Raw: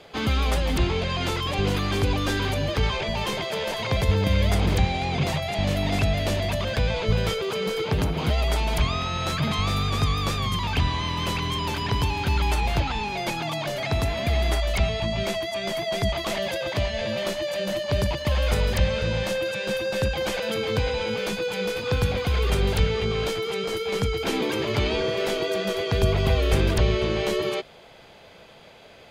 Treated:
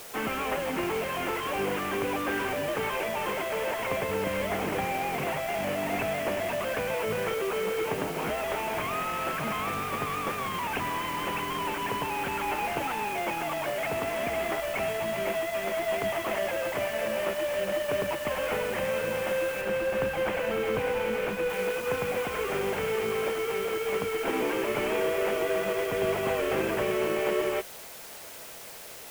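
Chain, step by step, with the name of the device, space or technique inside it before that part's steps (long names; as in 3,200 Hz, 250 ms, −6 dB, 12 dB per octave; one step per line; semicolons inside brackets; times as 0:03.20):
army field radio (band-pass filter 310–3,100 Hz; variable-slope delta modulation 16 kbit/s; white noise bed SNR 15 dB)
0:19.61–0:21.50: bass and treble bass +5 dB, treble −5 dB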